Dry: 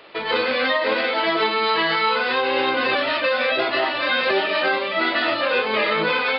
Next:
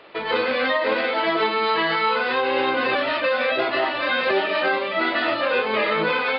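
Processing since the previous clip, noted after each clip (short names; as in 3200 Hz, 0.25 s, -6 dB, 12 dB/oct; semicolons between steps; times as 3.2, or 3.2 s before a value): high shelf 4600 Hz -10.5 dB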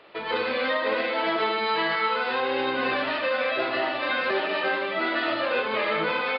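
feedback echo 76 ms, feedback 55%, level -7.5 dB; gain -5 dB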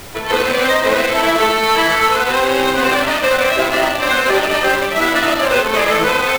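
in parallel at -9.5 dB: bit-crush 4-bit; on the sum: added noise pink -42 dBFS; gain +8.5 dB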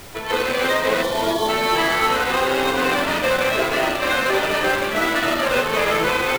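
spectral delete 1.03–1.49, 1200–3000 Hz; frequency-shifting echo 0.304 s, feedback 55%, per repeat -84 Hz, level -9 dB; gain -5.5 dB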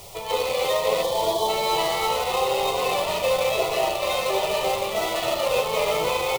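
low shelf 71 Hz -8.5 dB; fixed phaser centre 660 Hz, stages 4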